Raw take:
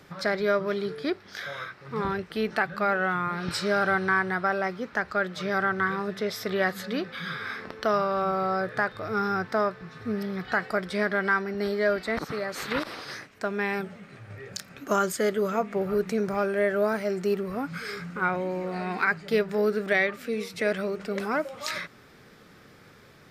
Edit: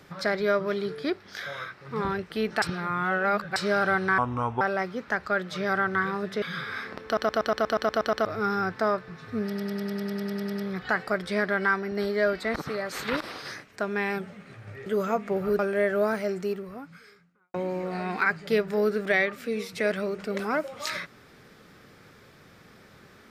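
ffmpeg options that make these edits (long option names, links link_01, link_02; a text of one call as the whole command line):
ffmpeg -i in.wav -filter_complex "[0:a]asplit=30[link_01][link_02][link_03][link_04][link_05][link_06][link_07][link_08][link_09][link_10][link_11][link_12][link_13][link_14][link_15][link_16][link_17][link_18][link_19][link_20][link_21][link_22][link_23][link_24][link_25][link_26][link_27][link_28][link_29][link_30];[link_01]atrim=end=2.622[link_31];[link_02]atrim=start=2.618:end=3.562,asetpts=PTS-STARTPTS,areverse[link_32];[link_03]atrim=start=3.558:end=4.184[link_33];[link_04]atrim=start=4.18:end=4.46,asetpts=PTS-STARTPTS,asetrate=28665,aresample=44100[link_34];[link_05]atrim=start=4.456:end=6.272[link_35];[link_06]atrim=start=7.148:end=7.902[link_36];[link_07]atrim=start=7.778:end=7.902[link_37];[link_08]atrim=start=7.778:end=7.902[link_38];[link_09]atrim=start=7.778:end=7.902[link_39];[link_10]atrim=start=7.778:end=7.902[link_40];[link_11]atrim=start=7.778:end=7.902[link_41];[link_12]atrim=start=7.778:end=7.902[link_42];[link_13]atrim=start=7.778:end=7.902[link_43];[link_14]atrim=start=7.778:end=7.902[link_44];[link_15]atrim=start=7.778:end=7.902[link_45];[link_16]atrim=start=8.978:end=10.282[link_46];[link_17]atrim=start=10.178:end=10.282[link_47];[link_18]atrim=start=10.178:end=10.282[link_48];[link_19]atrim=start=10.178:end=10.282[link_49];[link_20]atrim=start=10.178:end=10.282[link_50];[link_21]atrim=start=10.178:end=10.282[link_51];[link_22]atrim=start=10.178:end=10.282[link_52];[link_23]atrim=start=10.178:end=10.282[link_53];[link_24]atrim=start=10.178:end=10.282[link_54];[link_25]atrim=start=10.178:end=10.282[link_55];[link_26]atrim=start=10.178:end=10.282[link_56];[link_27]atrim=start=10.178:end=14.492[link_57];[link_28]atrim=start=15.308:end=16.042[link_58];[link_29]atrim=start=16.398:end=18.35,asetpts=PTS-STARTPTS,afade=type=out:start_time=0.642:duration=1.31:curve=qua[link_59];[link_30]atrim=start=18.35,asetpts=PTS-STARTPTS,afade=type=in:duration=0.004:curve=hsin[link_60];[link_31][link_32]acrossfade=duration=0.004:curve1=hsin:curve2=hsin[link_61];[link_61][link_33]acrossfade=duration=0.004:curve1=hsin:curve2=hsin[link_62];[link_62][link_34]acrossfade=duration=0.004:curve1=hsin:curve2=hsin[link_63];[link_63][link_35]acrossfade=duration=0.004:curve1=hsin:curve2=hsin[link_64];[link_64][link_36]acrossfade=duration=0.004:curve1=hsin:curve2=hsin[link_65];[link_65][link_37]acrossfade=duration=0.004:curve1=hsin:curve2=hsin[link_66];[link_66][link_38]acrossfade=duration=0.004:curve1=hsin:curve2=hsin[link_67];[link_67][link_39]acrossfade=duration=0.004:curve1=hsin:curve2=hsin[link_68];[link_68][link_40]acrossfade=duration=0.004:curve1=hsin:curve2=hsin[link_69];[link_69][link_41]acrossfade=duration=0.004:curve1=hsin:curve2=hsin[link_70];[link_70][link_42]acrossfade=duration=0.004:curve1=hsin:curve2=hsin[link_71];[link_71][link_43]acrossfade=duration=0.004:curve1=hsin:curve2=hsin[link_72];[link_72][link_44]acrossfade=duration=0.004:curve1=hsin:curve2=hsin[link_73];[link_73][link_45]acrossfade=duration=0.004:curve1=hsin:curve2=hsin[link_74];[link_74][link_46]acrossfade=duration=0.004:curve1=hsin:curve2=hsin[link_75];[link_75][link_47]acrossfade=duration=0.004:curve1=hsin:curve2=hsin[link_76];[link_76][link_48]acrossfade=duration=0.004:curve1=hsin:curve2=hsin[link_77];[link_77][link_49]acrossfade=duration=0.004:curve1=hsin:curve2=hsin[link_78];[link_78][link_50]acrossfade=duration=0.004:curve1=hsin:curve2=hsin[link_79];[link_79][link_51]acrossfade=duration=0.004:curve1=hsin:curve2=hsin[link_80];[link_80][link_52]acrossfade=duration=0.004:curve1=hsin:curve2=hsin[link_81];[link_81][link_53]acrossfade=duration=0.004:curve1=hsin:curve2=hsin[link_82];[link_82][link_54]acrossfade=duration=0.004:curve1=hsin:curve2=hsin[link_83];[link_83][link_55]acrossfade=duration=0.004:curve1=hsin:curve2=hsin[link_84];[link_84][link_56]acrossfade=duration=0.004:curve1=hsin:curve2=hsin[link_85];[link_85][link_57]acrossfade=duration=0.004:curve1=hsin:curve2=hsin[link_86];[link_86][link_58]acrossfade=duration=0.004:curve1=hsin:curve2=hsin[link_87];[link_59][link_60]concat=n=2:v=0:a=1[link_88];[link_87][link_88]acrossfade=duration=0.004:curve1=hsin:curve2=hsin" out.wav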